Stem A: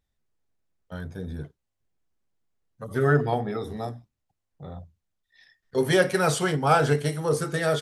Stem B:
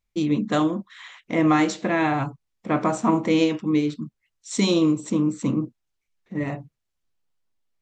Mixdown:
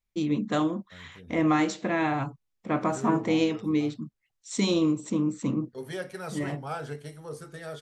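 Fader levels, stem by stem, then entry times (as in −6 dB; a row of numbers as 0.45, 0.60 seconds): −15.0, −4.5 decibels; 0.00, 0.00 seconds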